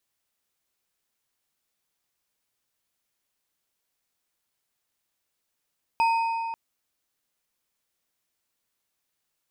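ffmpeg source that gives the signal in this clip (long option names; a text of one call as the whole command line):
ffmpeg -f lavfi -i "aevalsrc='0.126*pow(10,-3*t/2.68)*sin(2*PI*913*t)+0.0398*pow(10,-3*t/1.977)*sin(2*PI*2517.1*t)+0.0126*pow(10,-3*t/1.616)*sin(2*PI*4933.9*t)+0.00398*pow(10,-3*t/1.389)*sin(2*PI*8155.8*t)+0.00126*pow(10,-3*t/1.232)*sin(2*PI*12179.4*t)':duration=0.54:sample_rate=44100" out.wav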